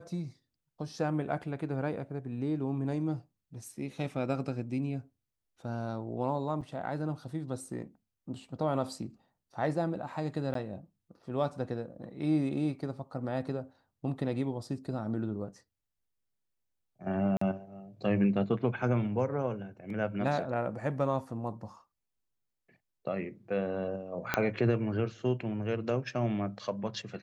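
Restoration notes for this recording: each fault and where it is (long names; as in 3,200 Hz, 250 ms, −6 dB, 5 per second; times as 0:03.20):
0:06.61–0:06.62: drop-out 6.5 ms
0:10.54–0:10.55: drop-out
0:17.37–0:17.41: drop-out 44 ms
0:24.34: click −11 dBFS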